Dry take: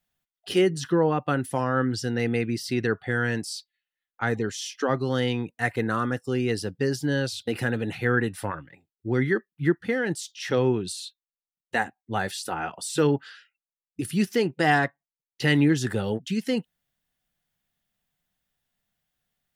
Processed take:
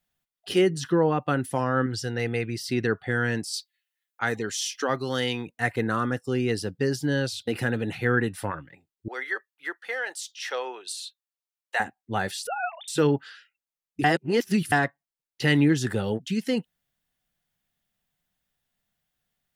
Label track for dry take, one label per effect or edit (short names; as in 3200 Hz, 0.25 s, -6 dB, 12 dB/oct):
1.860000	2.700000	bell 250 Hz -7 dB 0.86 oct
3.530000	5.470000	tilt +2 dB/oct
9.080000	11.800000	HPF 600 Hz 24 dB/oct
12.470000	12.880000	sine-wave speech
14.040000	14.720000	reverse